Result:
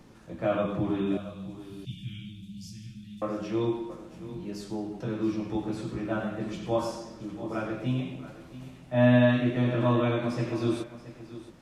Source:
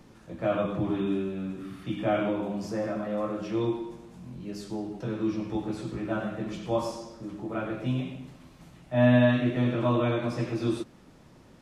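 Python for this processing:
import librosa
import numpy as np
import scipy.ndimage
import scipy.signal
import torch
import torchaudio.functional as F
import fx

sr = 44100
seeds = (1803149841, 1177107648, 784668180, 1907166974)

y = fx.ellip_bandstop(x, sr, low_hz=160.0, high_hz=3200.0, order=3, stop_db=70, at=(1.17, 3.22))
y = y + 10.0 ** (-15.0 / 20.0) * np.pad(y, (int(677 * sr / 1000.0), 0))[:len(y)]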